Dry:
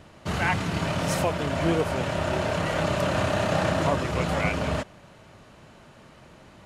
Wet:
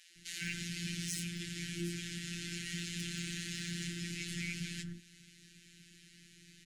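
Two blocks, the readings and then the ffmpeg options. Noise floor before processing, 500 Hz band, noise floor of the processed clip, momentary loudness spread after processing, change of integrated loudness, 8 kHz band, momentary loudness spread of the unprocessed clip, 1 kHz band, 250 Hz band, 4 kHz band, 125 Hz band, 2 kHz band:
-51 dBFS, -29.0 dB, -61 dBFS, 19 LU, -14.0 dB, -3.0 dB, 3 LU, -38.5 dB, -13.0 dB, -6.5 dB, -14.5 dB, -13.0 dB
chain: -filter_complex "[0:a]equalizer=f=8k:w=0.32:g=12.5,asplit=2[a][b];[b]acompressor=threshold=-36dB:ratio=12,volume=-2dB[c];[a][c]amix=inputs=2:normalize=0,flanger=delay=10:depth=2.7:regen=-69:speed=1:shape=sinusoidal,acrossover=split=380|1300[d][e][f];[e]adelay=100[g];[d]adelay=160[h];[h][g][f]amix=inputs=3:normalize=0,asoftclip=type=tanh:threshold=-19.5dB,afftfilt=real='hypot(re,im)*cos(PI*b)':imag='0':win_size=1024:overlap=0.75,asoftclip=type=hard:threshold=-14.5dB,asuperstop=centerf=750:order=12:qfactor=0.59,volume=-6.5dB"

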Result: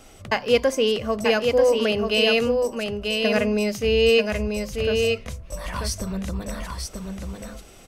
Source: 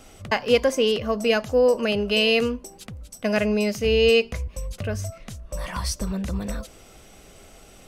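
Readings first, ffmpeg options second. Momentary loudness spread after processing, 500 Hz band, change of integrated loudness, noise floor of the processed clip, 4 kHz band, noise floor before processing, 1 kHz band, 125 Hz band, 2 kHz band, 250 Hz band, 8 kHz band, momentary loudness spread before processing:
15 LU, +1.5 dB, +0.5 dB, -46 dBFS, +1.5 dB, -49 dBFS, +1.5 dB, -0.5 dB, +1.0 dB, +0.5 dB, +1.0 dB, 16 LU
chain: -filter_complex "[0:a]bandreject=f=50:t=h:w=6,bandreject=f=100:t=h:w=6,bandreject=f=150:t=h:w=6,bandreject=f=200:t=h:w=6,bandreject=f=250:t=h:w=6,asplit=2[a][b];[b]aecho=0:1:938:0.596[c];[a][c]amix=inputs=2:normalize=0"

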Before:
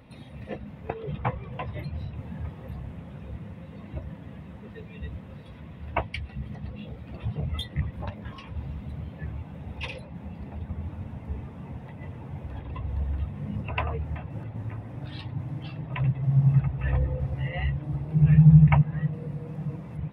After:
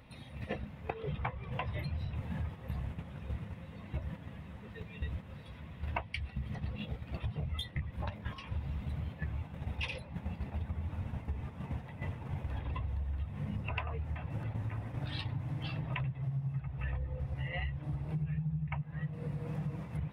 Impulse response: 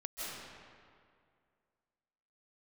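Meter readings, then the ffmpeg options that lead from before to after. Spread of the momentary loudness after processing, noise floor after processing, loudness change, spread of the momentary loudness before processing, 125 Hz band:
6 LU, -50 dBFS, -12.0 dB, 18 LU, -11.5 dB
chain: -af "agate=range=-8dB:threshold=-38dB:ratio=16:detection=peak,equalizer=f=290:t=o:w=2.9:g=-7,acompressor=threshold=-41dB:ratio=10,volume=7.5dB"

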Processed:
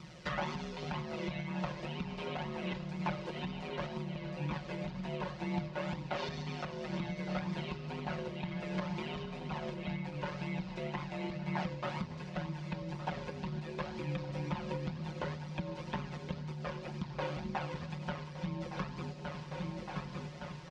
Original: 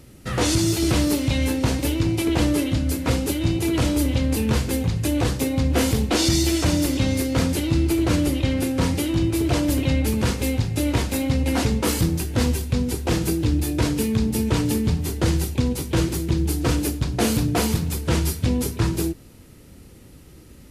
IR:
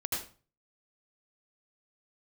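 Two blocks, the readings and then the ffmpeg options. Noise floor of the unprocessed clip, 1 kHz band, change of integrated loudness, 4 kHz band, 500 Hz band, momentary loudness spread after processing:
-46 dBFS, -9.0 dB, -17.5 dB, -18.5 dB, -15.0 dB, 4 LU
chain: -filter_complex "[0:a]aeval=exprs='val(0)*sin(2*PI*77*n/s)':c=same,equalizer=f=200:w=1.6:g=-12.5,asplit=2[a][b];[1:a]atrim=start_sample=2205,lowpass=7.1k[c];[b][c]afir=irnorm=-1:irlink=0,volume=-15.5dB[d];[a][d]amix=inputs=2:normalize=0,flanger=delay=0.8:depth=1.3:regen=28:speed=2:shape=triangular,acrossover=split=2800[e][f];[f]acompressor=threshold=-49dB:ratio=4:attack=1:release=60[g];[e][g]amix=inputs=2:normalize=0,aecho=1:1:5.5:0.65,aecho=1:1:1164|2328|3492|4656|5820:0.2|0.0998|0.0499|0.0249|0.0125,acompressor=threshold=-36dB:ratio=12,highpass=110,equalizer=f=180:t=q:w=4:g=8,equalizer=f=400:t=q:w=4:g=-9,equalizer=f=960:t=q:w=4:g=5,lowpass=f=5.7k:w=0.5412,lowpass=f=5.7k:w=1.3066,volume=5.5dB"

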